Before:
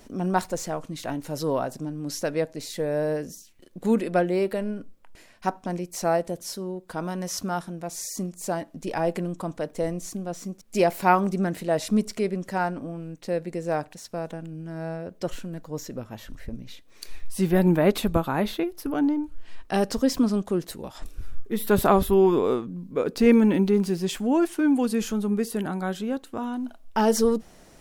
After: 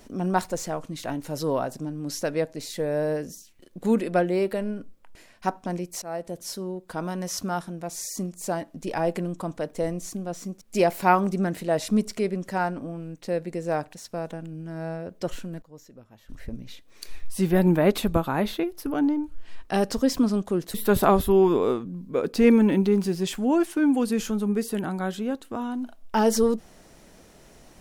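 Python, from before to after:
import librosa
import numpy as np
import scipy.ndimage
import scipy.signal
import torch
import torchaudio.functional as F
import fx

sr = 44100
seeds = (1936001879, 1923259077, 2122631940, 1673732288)

y = fx.edit(x, sr, fx.fade_in_from(start_s=6.02, length_s=0.47, floor_db=-19.0),
    fx.fade_down_up(start_s=15.4, length_s=1.11, db=-14.0, fade_s=0.22, curve='log'),
    fx.cut(start_s=20.74, length_s=0.82), tone=tone)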